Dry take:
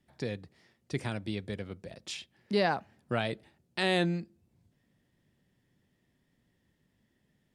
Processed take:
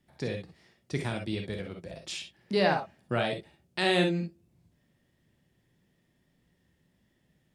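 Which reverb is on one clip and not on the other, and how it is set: gated-style reverb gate 80 ms rising, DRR 3 dB; trim +1 dB

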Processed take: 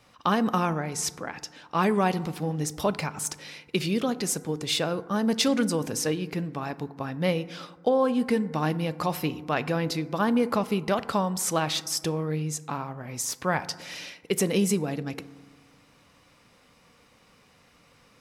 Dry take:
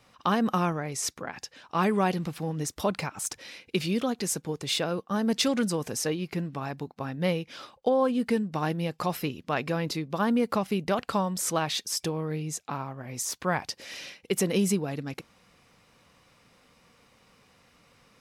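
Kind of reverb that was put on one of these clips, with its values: FDN reverb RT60 1.3 s, low-frequency decay 1.2×, high-frequency decay 0.35×, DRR 14 dB; trim +1.5 dB

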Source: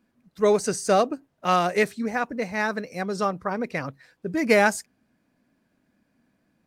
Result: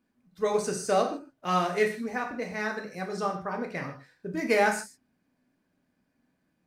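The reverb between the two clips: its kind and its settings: gated-style reverb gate 180 ms falling, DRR 2 dB; trim -7 dB

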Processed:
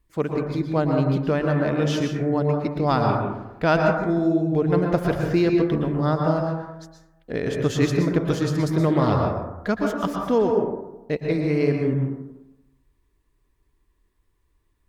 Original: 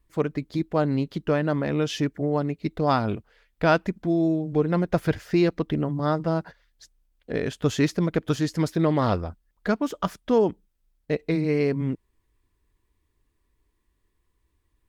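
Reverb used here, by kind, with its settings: plate-style reverb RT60 1 s, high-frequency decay 0.3×, pre-delay 105 ms, DRR 1.5 dB

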